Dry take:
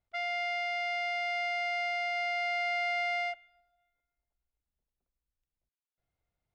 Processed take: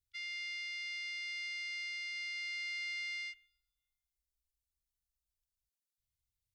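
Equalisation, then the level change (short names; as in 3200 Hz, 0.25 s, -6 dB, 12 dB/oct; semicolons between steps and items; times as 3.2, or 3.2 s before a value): Chebyshev band-stop 100–3800 Hz, order 2; dynamic EQ 2100 Hz, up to +6 dB, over -57 dBFS, Q 2.2; high shelf 4100 Hz +8.5 dB; -4.0 dB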